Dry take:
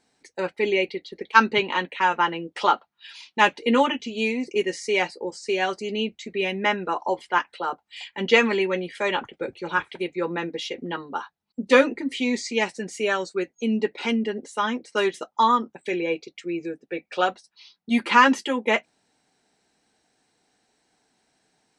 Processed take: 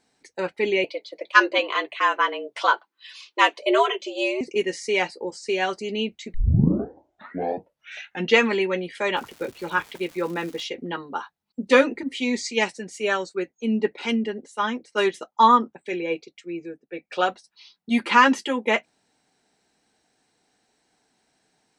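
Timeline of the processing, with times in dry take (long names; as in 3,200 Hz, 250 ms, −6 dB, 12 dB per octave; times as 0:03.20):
0:00.84–0:04.41: frequency shifter +130 Hz
0:06.34: tape start 2.02 s
0:09.15–0:10.63: surface crackle 530 per second −36 dBFS
0:12.03–0:17.10: multiband upward and downward expander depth 70%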